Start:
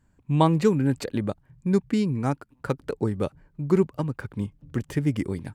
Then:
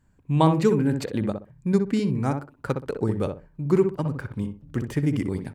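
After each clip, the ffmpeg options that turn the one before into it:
-filter_complex "[0:a]asplit=2[a][b];[b]adelay=63,lowpass=f=1.3k:p=1,volume=-5dB,asplit=2[c][d];[d]adelay=63,lowpass=f=1.3k:p=1,volume=0.24,asplit=2[e][f];[f]adelay=63,lowpass=f=1.3k:p=1,volume=0.24[g];[a][c][e][g]amix=inputs=4:normalize=0"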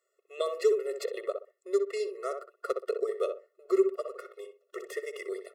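-filter_complex "[0:a]acrossover=split=420|3000[a][b][c];[b]acompressor=threshold=-27dB:ratio=6[d];[a][d][c]amix=inputs=3:normalize=0,afftfilt=real='re*eq(mod(floor(b*sr/1024/360),2),1)':imag='im*eq(mod(floor(b*sr/1024/360),2),1)':win_size=1024:overlap=0.75"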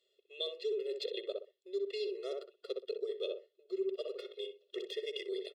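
-af "firequalizer=gain_entry='entry(370,0);entry(990,-21);entry(1500,-18);entry(3300,14);entry(6000,-8);entry(8700,-14)':delay=0.05:min_phase=1,areverse,acompressor=threshold=-40dB:ratio=4,areverse,volume=4dB"

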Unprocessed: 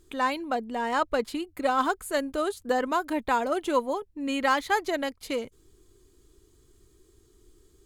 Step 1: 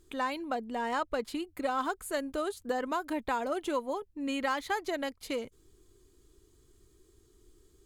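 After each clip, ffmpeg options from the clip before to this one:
-af "acompressor=threshold=-26dB:ratio=2.5,volume=-3dB"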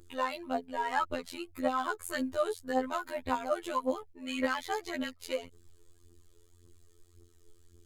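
-af "aphaser=in_gain=1:out_gain=1:delay=2.4:decay=0.7:speed=1.8:type=triangular,afftfilt=real='hypot(re,im)*cos(PI*b)':imag='0':win_size=2048:overlap=0.75"

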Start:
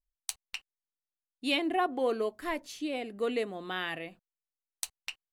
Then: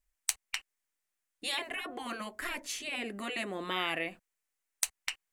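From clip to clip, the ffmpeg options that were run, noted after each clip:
-filter_complex "[0:a]asplit=2[a][b];[b]acompressor=threshold=-39dB:ratio=4,volume=1dB[c];[a][c]amix=inputs=2:normalize=0,equalizer=f=125:t=o:w=1:g=-8,equalizer=f=2k:t=o:w=1:g=7,equalizer=f=4k:t=o:w=1:g=-4,equalizer=f=8k:t=o:w=1:g=5,afftfilt=real='re*lt(hypot(re,im),0.141)':imag='im*lt(hypot(re,im),0.141)':win_size=1024:overlap=0.75"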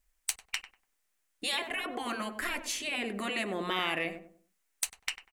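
-filter_complex "[0:a]asplit=2[a][b];[b]acompressor=threshold=-42dB:ratio=6,volume=0.5dB[c];[a][c]amix=inputs=2:normalize=0,asoftclip=type=tanh:threshold=-14dB,asplit=2[d][e];[e]adelay=97,lowpass=f=900:p=1,volume=-7.5dB,asplit=2[f][g];[g]adelay=97,lowpass=f=900:p=1,volume=0.36,asplit=2[h][i];[i]adelay=97,lowpass=f=900:p=1,volume=0.36,asplit=2[j][k];[k]adelay=97,lowpass=f=900:p=1,volume=0.36[l];[d][f][h][j][l]amix=inputs=5:normalize=0"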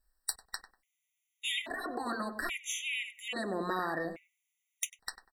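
-af "afftfilt=real='re*gt(sin(2*PI*0.6*pts/sr)*(1-2*mod(floor(b*sr/1024/1900),2)),0)':imag='im*gt(sin(2*PI*0.6*pts/sr)*(1-2*mod(floor(b*sr/1024/1900),2)),0)':win_size=1024:overlap=0.75"

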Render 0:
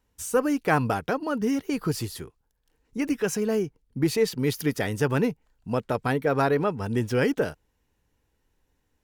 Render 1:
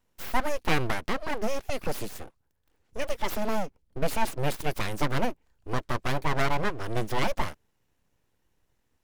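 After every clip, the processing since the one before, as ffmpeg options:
-af "aeval=exprs='abs(val(0))':c=same"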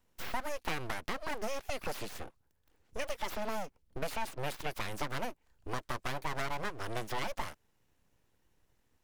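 -filter_complex "[0:a]acrossover=split=620|5300[a][b][c];[a]acompressor=threshold=-37dB:ratio=4[d];[b]acompressor=threshold=-37dB:ratio=4[e];[c]acompressor=threshold=-50dB:ratio=4[f];[d][e][f]amix=inputs=3:normalize=0"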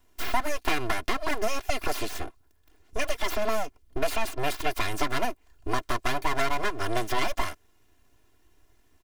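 -af "aecho=1:1:2.9:0.71,volume=7.5dB"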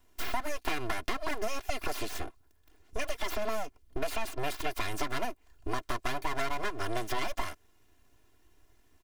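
-af "acompressor=threshold=-28dB:ratio=2,volume=-1.5dB"

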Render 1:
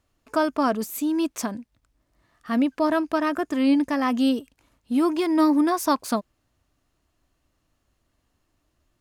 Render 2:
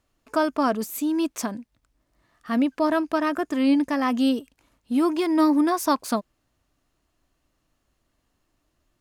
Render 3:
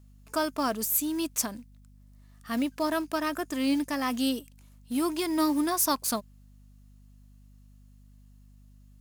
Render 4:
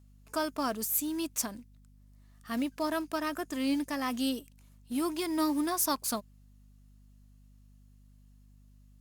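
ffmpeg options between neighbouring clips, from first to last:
-af "equalizer=f=82:w=1.6:g=-4.5"
-af "crystalizer=i=3.5:c=0,acrusher=bits=6:mode=log:mix=0:aa=0.000001,aeval=exprs='val(0)+0.00501*(sin(2*PI*50*n/s)+sin(2*PI*2*50*n/s)/2+sin(2*PI*3*50*n/s)/3+sin(2*PI*4*50*n/s)/4+sin(2*PI*5*50*n/s)/5)':c=same,volume=-7dB"
-af "volume=-3.5dB" -ar 48000 -c:a libopus -b:a 64k

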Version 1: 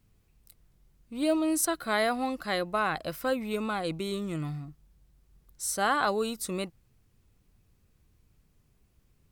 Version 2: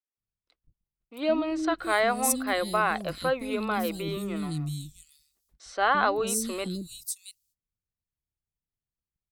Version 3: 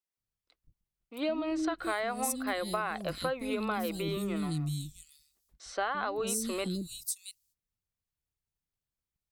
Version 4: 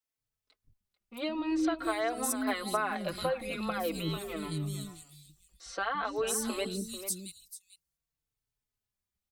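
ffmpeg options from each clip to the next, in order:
-filter_complex "[0:a]agate=range=-32dB:threshold=-56dB:ratio=16:detection=peak,acrossover=split=320|4300[a][b][c];[a]adelay=170[d];[c]adelay=670[e];[d][b][e]amix=inputs=3:normalize=0,volume=3.5dB"
-af "acompressor=threshold=-28dB:ratio=12"
-filter_complex "[0:a]aecho=1:1:442:0.224,asplit=2[a][b];[b]adelay=4,afreqshift=-0.49[c];[a][c]amix=inputs=2:normalize=1,volume=3.5dB"

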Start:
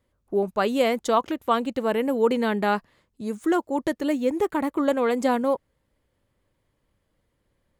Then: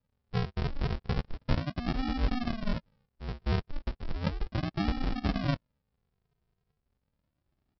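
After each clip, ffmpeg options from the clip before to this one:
-af "afreqshift=21,aresample=11025,acrusher=samples=30:mix=1:aa=0.000001:lfo=1:lforange=18:lforate=0.35,aresample=44100,volume=-7dB"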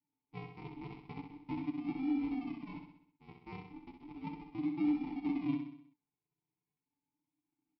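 -filter_complex "[0:a]asplit=3[a][b][c];[a]bandpass=f=300:t=q:w=8,volume=0dB[d];[b]bandpass=f=870:t=q:w=8,volume=-6dB[e];[c]bandpass=f=2.24k:t=q:w=8,volume=-9dB[f];[d][e][f]amix=inputs=3:normalize=0,aecho=1:1:6.8:0.75,asplit=2[g][h];[h]aecho=0:1:64|128|192|256|320|384:0.473|0.246|0.128|0.0665|0.0346|0.018[i];[g][i]amix=inputs=2:normalize=0,volume=1dB"

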